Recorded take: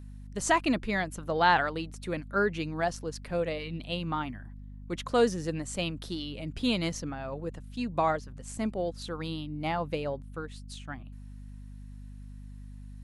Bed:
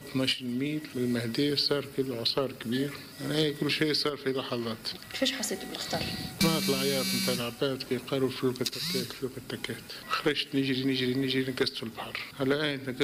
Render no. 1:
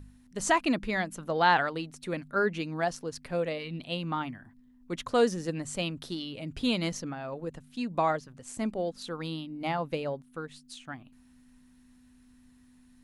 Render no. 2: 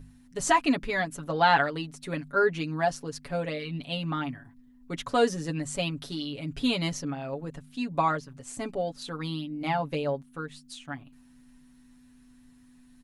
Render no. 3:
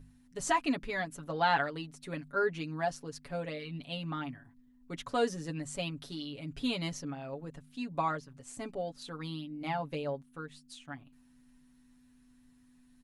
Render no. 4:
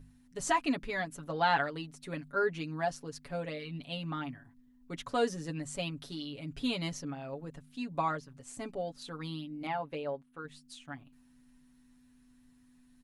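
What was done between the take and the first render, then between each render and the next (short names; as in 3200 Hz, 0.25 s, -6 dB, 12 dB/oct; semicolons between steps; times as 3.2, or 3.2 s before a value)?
de-hum 50 Hz, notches 4
comb 7.1 ms, depth 77%
gain -6.5 dB
9.67–10.45 tone controls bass -8 dB, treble -10 dB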